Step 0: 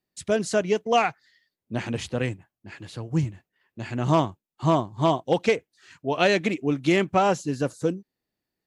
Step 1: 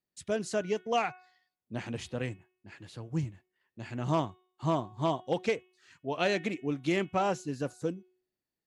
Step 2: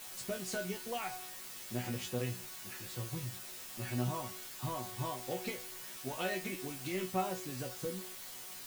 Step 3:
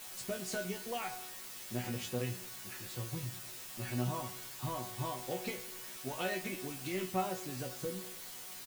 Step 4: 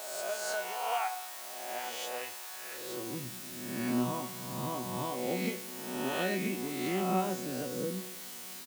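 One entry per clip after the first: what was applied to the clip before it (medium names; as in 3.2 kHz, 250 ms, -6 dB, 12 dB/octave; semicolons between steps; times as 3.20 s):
de-hum 367.3 Hz, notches 10; trim -8 dB
compression 10:1, threshold -34 dBFS, peak gain reduction 12 dB; word length cut 8-bit, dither triangular; chord resonator B2 fifth, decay 0.21 s; trim +11.5 dB
feedback delay 103 ms, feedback 56%, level -18 dB
reverse spectral sustain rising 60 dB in 1.33 s; high-pass sweep 780 Hz -> 210 Hz, 2.49–3.26 s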